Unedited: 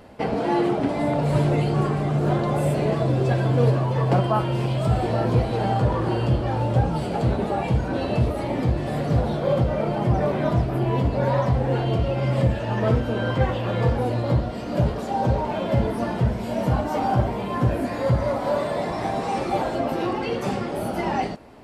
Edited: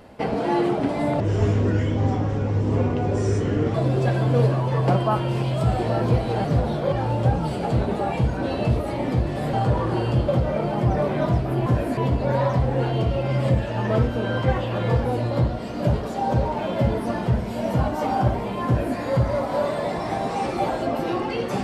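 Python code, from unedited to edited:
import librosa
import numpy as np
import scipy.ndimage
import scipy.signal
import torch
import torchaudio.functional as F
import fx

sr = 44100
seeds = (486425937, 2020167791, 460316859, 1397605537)

y = fx.edit(x, sr, fx.speed_span(start_s=1.2, length_s=1.78, speed=0.7),
    fx.swap(start_s=5.68, length_s=0.75, other_s=9.04, other_length_s=0.48),
    fx.duplicate(start_s=17.59, length_s=0.31, to_s=10.9), tone=tone)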